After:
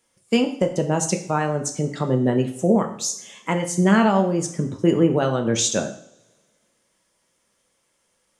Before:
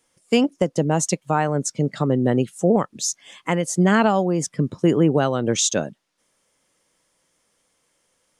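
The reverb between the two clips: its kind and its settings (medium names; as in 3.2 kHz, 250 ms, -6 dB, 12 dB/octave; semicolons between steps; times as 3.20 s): two-slope reverb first 0.55 s, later 1.9 s, from -24 dB, DRR 4 dB; trim -2 dB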